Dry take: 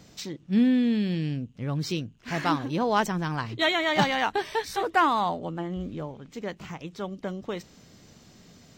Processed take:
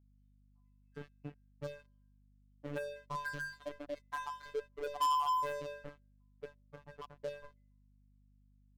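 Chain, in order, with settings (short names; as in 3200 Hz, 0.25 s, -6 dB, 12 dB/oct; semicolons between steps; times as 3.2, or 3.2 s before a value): random spectral dropouts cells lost 83%; gate with hold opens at -49 dBFS; LPF 1400 Hz 24 dB/oct; low shelf 84 Hz +4.5 dB; notches 50/100/150/200/250 Hz; resonator 520 Hz, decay 0.62 s, mix 100%; sample leveller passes 5; robotiser 145 Hz; hum 50 Hz, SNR 25 dB; gain +8.5 dB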